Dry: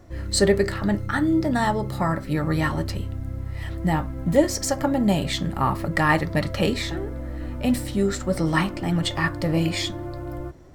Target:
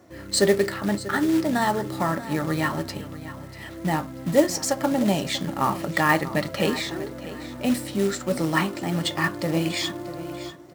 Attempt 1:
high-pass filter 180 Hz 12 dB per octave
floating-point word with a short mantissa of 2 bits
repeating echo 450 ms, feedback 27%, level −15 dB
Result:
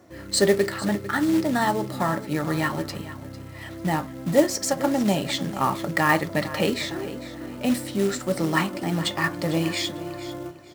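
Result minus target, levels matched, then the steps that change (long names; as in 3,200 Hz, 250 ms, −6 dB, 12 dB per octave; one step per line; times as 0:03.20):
echo 190 ms early
change: repeating echo 640 ms, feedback 27%, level −15 dB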